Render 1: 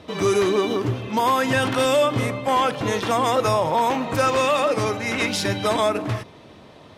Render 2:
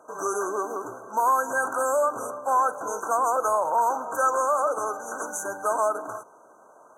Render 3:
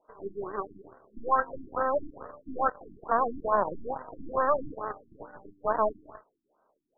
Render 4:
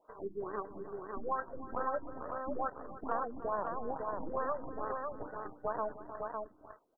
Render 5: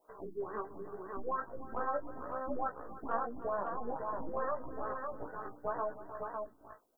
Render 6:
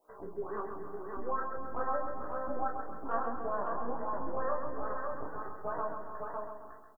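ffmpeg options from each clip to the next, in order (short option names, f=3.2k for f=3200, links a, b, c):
-af "afftfilt=real='re*(1-between(b*sr/4096,1600,5900))':imag='im*(1-between(b*sr/4096,1600,5900))':win_size=4096:overlap=0.75,highpass=700"
-af "aeval=exprs='0.266*(cos(1*acos(clip(val(0)/0.266,-1,1)))-cos(1*PI/2))+0.00668*(cos(3*acos(clip(val(0)/0.266,-1,1)))-cos(3*PI/2))+0.0168*(cos(6*acos(clip(val(0)/0.266,-1,1)))-cos(6*PI/2))+0.0299*(cos(7*acos(clip(val(0)/0.266,-1,1)))-cos(7*PI/2))+0.00376*(cos(8*acos(clip(val(0)/0.266,-1,1)))-cos(8*PI/2))':c=same,afftfilt=real='re*lt(b*sr/1024,340*pow(2000/340,0.5+0.5*sin(2*PI*2.3*pts/sr)))':imag='im*lt(b*sr/1024,340*pow(2000/340,0.5+0.5*sin(2*PI*2.3*pts/sr)))':win_size=1024:overlap=0.75"
-af "acompressor=threshold=-37dB:ratio=2.5,aecho=1:1:308|554:0.168|0.631"
-af "flanger=delay=15.5:depth=2.4:speed=0.83,crystalizer=i=2:c=0,volume=2dB"
-filter_complex "[0:a]asplit=2[a][b];[b]adelay=29,volume=-6.5dB[c];[a][c]amix=inputs=2:normalize=0,aecho=1:1:133|266|399|532|665|798:0.473|0.232|0.114|0.0557|0.0273|0.0134"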